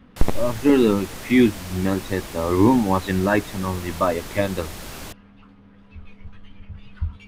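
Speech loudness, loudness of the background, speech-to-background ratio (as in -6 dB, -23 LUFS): -21.5 LUFS, -35.5 LUFS, 14.0 dB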